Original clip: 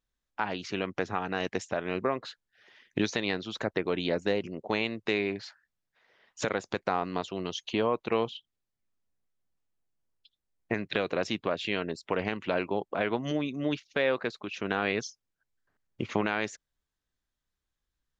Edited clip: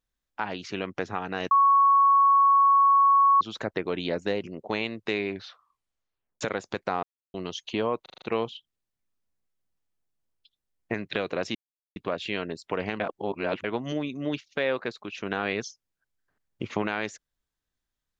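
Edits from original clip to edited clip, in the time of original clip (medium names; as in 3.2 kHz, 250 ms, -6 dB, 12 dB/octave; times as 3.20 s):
1.51–3.41 s: bleep 1.11 kHz -15.5 dBFS
5.32 s: tape stop 1.09 s
7.03–7.34 s: mute
8.02 s: stutter 0.04 s, 6 plays
11.35 s: insert silence 0.41 s
12.39–13.03 s: reverse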